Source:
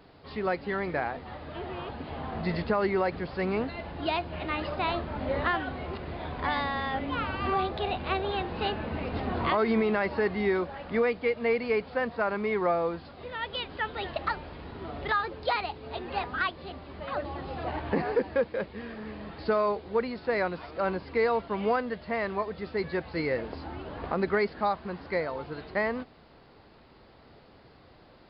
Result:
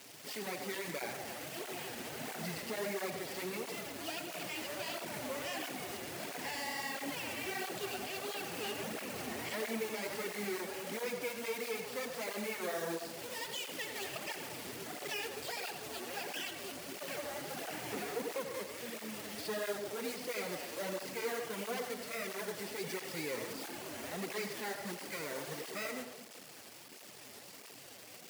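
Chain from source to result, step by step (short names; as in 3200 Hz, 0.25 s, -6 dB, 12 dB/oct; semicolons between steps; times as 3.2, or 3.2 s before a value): minimum comb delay 0.38 ms; low shelf 310 Hz -5.5 dB; companded quantiser 4-bit; soft clip -26 dBFS, distortion -12 dB; high shelf 3700 Hz +11 dB; limiter -30 dBFS, peak gain reduction 12.5 dB; HPF 120 Hz 24 dB/oct; on a send at -5 dB: reverb RT60 1.2 s, pre-delay 81 ms; on the sum: tape flanging out of phase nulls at 1.5 Hz, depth 7 ms; gain +1.5 dB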